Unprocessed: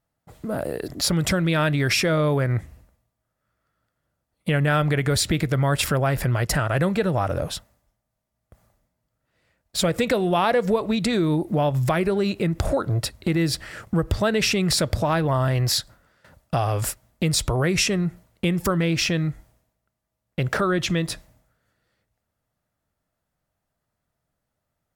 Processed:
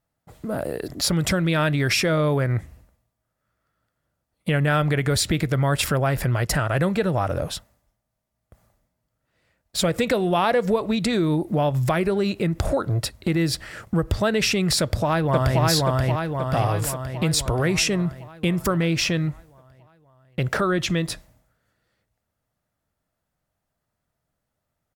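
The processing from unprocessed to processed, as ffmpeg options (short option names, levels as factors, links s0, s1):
-filter_complex "[0:a]asplit=2[s0][s1];[s1]afade=t=in:st=14.8:d=0.01,afade=t=out:st=15.62:d=0.01,aecho=0:1:530|1060|1590|2120|2650|3180|3710|4240|4770:0.944061|0.566437|0.339862|0.203917|0.12235|0.0734102|0.0440461|0.0264277|0.0158566[s2];[s0][s2]amix=inputs=2:normalize=0"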